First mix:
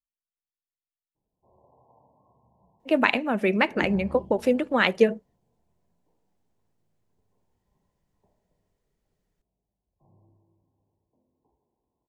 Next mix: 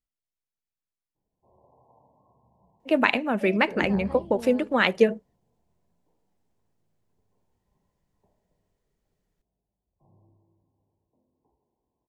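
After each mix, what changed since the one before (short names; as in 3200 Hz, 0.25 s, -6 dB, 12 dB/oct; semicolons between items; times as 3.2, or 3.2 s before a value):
second voice +11.0 dB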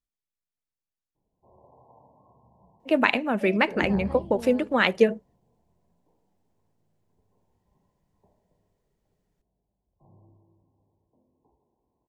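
background +4.5 dB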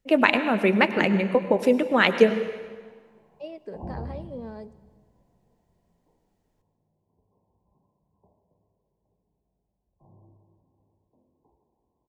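first voice: entry -2.80 s; reverb: on, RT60 1.5 s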